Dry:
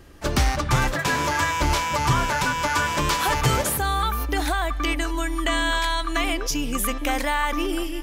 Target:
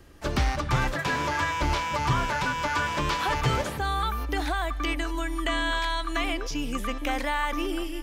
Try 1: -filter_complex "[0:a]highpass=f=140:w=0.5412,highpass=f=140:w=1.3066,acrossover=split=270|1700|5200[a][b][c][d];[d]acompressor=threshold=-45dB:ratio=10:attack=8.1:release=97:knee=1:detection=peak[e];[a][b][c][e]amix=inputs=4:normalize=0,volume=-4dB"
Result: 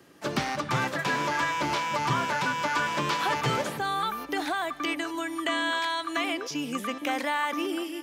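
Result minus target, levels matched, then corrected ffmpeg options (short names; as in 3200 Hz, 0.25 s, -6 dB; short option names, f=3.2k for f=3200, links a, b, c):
125 Hz band -5.5 dB
-filter_complex "[0:a]acrossover=split=270|1700|5200[a][b][c][d];[d]acompressor=threshold=-45dB:ratio=10:attack=8.1:release=97:knee=1:detection=peak[e];[a][b][c][e]amix=inputs=4:normalize=0,volume=-4dB"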